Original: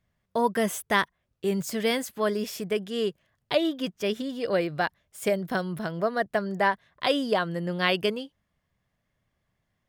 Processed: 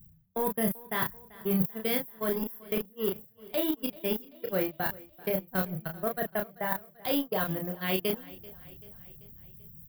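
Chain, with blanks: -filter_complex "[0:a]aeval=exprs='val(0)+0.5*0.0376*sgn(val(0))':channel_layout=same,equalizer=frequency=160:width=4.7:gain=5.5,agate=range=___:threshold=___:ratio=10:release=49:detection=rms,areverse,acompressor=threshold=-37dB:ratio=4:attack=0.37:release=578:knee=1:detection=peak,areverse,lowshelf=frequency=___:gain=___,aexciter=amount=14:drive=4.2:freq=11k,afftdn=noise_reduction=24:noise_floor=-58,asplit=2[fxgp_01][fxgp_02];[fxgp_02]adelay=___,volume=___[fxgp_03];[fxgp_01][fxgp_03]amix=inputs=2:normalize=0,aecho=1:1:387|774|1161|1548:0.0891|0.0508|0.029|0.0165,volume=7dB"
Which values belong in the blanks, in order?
-31dB, -23dB, 310, 5, 32, -4dB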